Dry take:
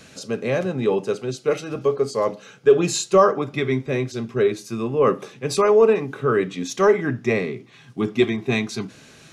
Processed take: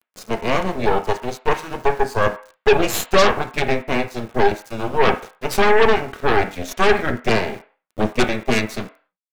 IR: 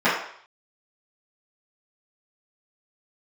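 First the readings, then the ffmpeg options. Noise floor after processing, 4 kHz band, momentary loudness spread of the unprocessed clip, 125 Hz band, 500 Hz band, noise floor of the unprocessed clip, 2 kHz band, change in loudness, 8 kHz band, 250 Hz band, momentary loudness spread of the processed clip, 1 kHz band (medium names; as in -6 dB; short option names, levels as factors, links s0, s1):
-81 dBFS, +6.5 dB, 11 LU, 0.0 dB, -1.0 dB, -48 dBFS, +7.5 dB, +1.0 dB, 0.0 dB, -0.5 dB, 10 LU, +6.0 dB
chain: -filter_complex "[0:a]aeval=exprs='val(0)*gte(abs(val(0)),0.0158)':c=same,aeval=exprs='0.631*(cos(1*acos(clip(val(0)/0.631,-1,1)))-cos(1*PI/2))+0.224*(cos(8*acos(clip(val(0)/0.631,-1,1)))-cos(8*PI/2))':c=same,asplit=2[s0][s1];[1:a]atrim=start_sample=2205,asetrate=61740,aresample=44100,lowpass=3000[s2];[s1][s2]afir=irnorm=-1:irlink=0,volume=0.0631[s3];[s0][s3]amix=inputs=2:normalize=0,volume=0.708"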